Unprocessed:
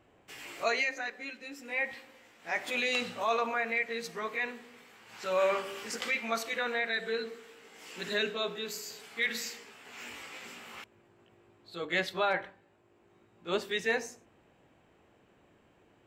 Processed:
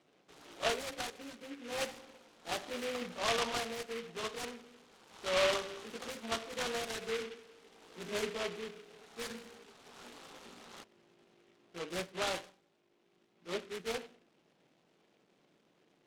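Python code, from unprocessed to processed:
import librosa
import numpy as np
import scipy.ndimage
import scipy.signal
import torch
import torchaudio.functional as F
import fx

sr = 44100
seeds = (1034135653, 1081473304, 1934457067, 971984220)

y = scipy.signal.sosfilt(scipy.signal.ellip(3, 1.0, 40, [150.0, 1500.0], 'bandpass', fs=sr, output='sos'), x)
y = fx.rider(y, sr, range_db=10, speed_s=2.0)
y = fx.noise_mod_delay(y, sr, seeds[0], noise_hz=2100.0, depth_ms=0.15)
y = y * librosa.db_to_amplitude(-3.5)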